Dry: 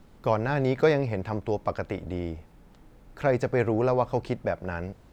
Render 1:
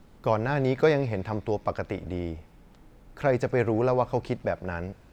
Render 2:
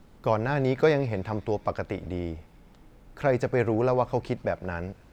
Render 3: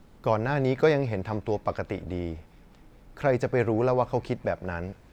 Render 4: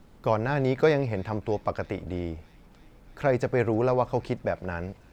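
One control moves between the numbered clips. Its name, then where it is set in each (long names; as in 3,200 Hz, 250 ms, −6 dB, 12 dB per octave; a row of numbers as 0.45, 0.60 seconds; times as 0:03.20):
delay with a high-pass on its return, delay time: 87, 128, 208, 321 milliseconds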